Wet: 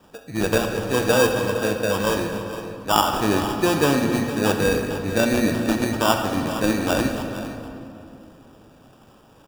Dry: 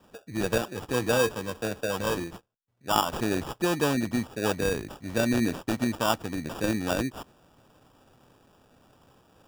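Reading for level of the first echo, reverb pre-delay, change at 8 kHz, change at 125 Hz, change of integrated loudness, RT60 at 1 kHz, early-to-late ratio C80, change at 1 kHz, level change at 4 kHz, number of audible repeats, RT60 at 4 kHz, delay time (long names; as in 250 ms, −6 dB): −13.5 dB, 16 ms, +6.5 dB, +6.5 dB, +6.5 dB, 2.5 s, 5.5 dB, +7.5 dB, +7.0 dB, 1, 1.6 s, 459 ms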